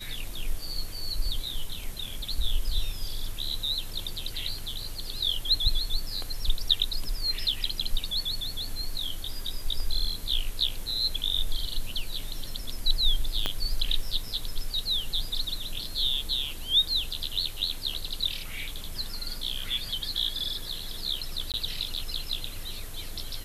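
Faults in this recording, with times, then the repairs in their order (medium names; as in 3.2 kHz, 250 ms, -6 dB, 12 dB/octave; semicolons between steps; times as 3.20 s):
13.46 s: pop -12 dBFS
21.52–21.54 s: dropout 18 ms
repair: de-click; interpolate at 21.52 s, 18 ms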